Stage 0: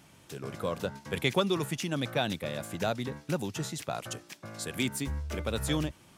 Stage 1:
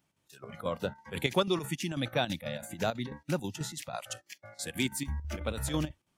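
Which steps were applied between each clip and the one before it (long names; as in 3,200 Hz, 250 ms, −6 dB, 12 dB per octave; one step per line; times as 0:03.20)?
noise reduction from a noise print of the clip's start 19 dB
square-wave tremolo 6.1 Hz, depth 60%, duty 70%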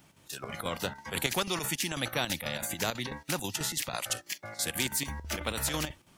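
every bin compressed towards the loudest bin 2 to 1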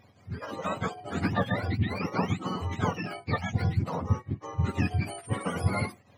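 frequency axis turned over on the octave scale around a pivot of 810 Hz
flat-topped bell 1,100 Hz +8.5 dB 2.7 octaves
level −1.5 dB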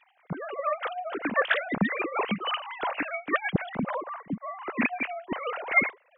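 three sine waves on the formant tracks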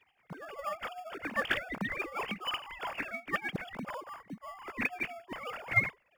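tilt shelving filter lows −6 dB, about 1,100 Hz
in parallel at −10.5 dB: decimation without filtering 22×
on the sum: level −8.5 dB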